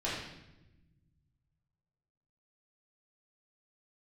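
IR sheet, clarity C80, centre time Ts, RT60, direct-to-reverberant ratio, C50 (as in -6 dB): 3.5 dB, 64 ms, 0.95 s, -9.0 dB, 0.5 dB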